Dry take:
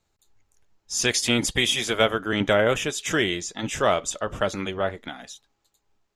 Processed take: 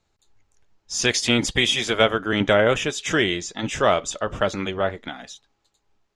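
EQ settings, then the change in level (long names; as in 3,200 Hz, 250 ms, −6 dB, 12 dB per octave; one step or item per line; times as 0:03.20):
low-pass filter 6,800 Hz 12 dB per octave
+2.5 dB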